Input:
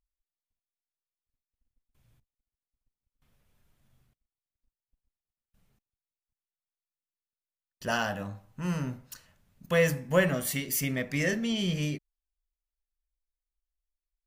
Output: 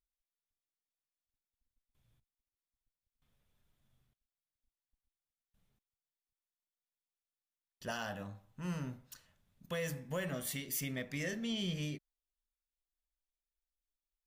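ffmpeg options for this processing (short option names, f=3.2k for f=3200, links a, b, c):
-filter_complex "[0:a]equalizer=f=3.5k:w=6.3:g=6,acrossover=split=4700[a][b];[a]alimiter=limit=-21dB:level=0:latency=1:release=161[c];[c][b]amix=inputs=2:normalize=0,volume=-8dB"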